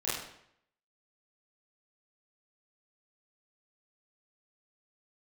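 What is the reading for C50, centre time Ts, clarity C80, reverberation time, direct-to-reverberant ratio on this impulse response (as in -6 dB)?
2.0 dB, 64 ms, 5.0 dB, 0.70 s, -10.0 dB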